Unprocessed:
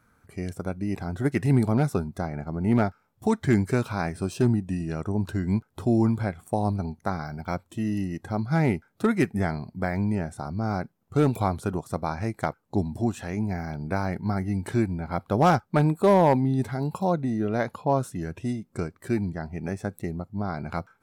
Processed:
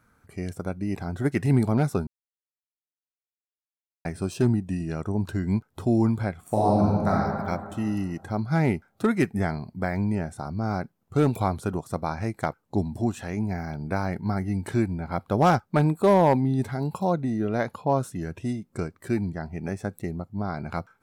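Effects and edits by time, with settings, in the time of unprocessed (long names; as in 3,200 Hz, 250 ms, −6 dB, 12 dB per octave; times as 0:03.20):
0:02.07–0:04.05: silence
0:06.40–0:07.10: thrown reverb, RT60 2.1 s, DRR −5.5 dB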